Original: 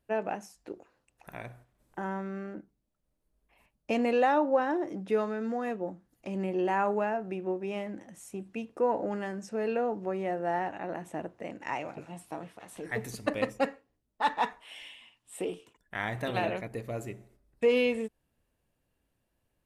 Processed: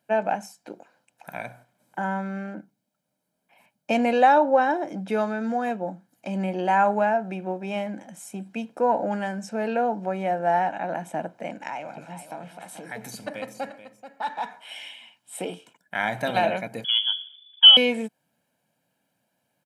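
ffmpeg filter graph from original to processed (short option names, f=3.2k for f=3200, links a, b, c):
-filter_complex "[0:a]asettb=1/sr,asplit=3[a][b][c];[a]atrim=end=11.674[d];[b]atrim=start=11.67:end=14.6,asetpts=PTS-STARTPTS,afade=t=in:d=0.004:c=qsin,afade=t=out:st=2.926:d=0.004:c=qsin,acompressor=threshold=-42dB:ratio=2:attack=3.2:release=140:knee=1:detection=peak,aecho=1:1:433:0.251,atrim=end_sample=129213[e];[c]atrim=start=14.596[f];[d][e]acrossfade=d=0.004:c1=hsin:c2=qsin[g];[g][f]acrossfade=d=0.004:c1=qsin:c2=hsin,asettb=1/sr,asplit=3[h][i][j];[h]atrim=end=16.844[k];[i]atrim=start=16.84:end=17.77,asetpts=PTS-STARTPTS,afade=t=in:d=0.004:c=qsin,afade=t=out:st=0.926:d=0.004:c=qsin,aemphasis=mode=reproduction:type=riaa,lowpass=f=3k:t=q:w=0.5098,lowpass=f=3k:t=q:w=0.6013,lowpass=f=3k:t=q:w=0.9,lowpass=f=3k:t=q:w=2.563,afreqshift=-3500,highpass=280[l];[j]atrim=start=17.766[m];[k][l]acrossfade=d=0.004:c1=hsin:c2=qsin[n];[n][m]acrossfade=d=0.004:c1=qsin:c2=hsin,highpass=f=160:w=0.5412,highpass=f=160:w=1.3066,aecho=1:1:1.3:0.61,volume=6dB"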